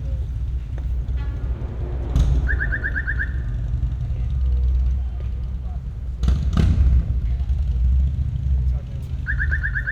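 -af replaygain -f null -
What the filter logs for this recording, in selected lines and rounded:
track_gain = +9.0 dB
track_peak = 0.392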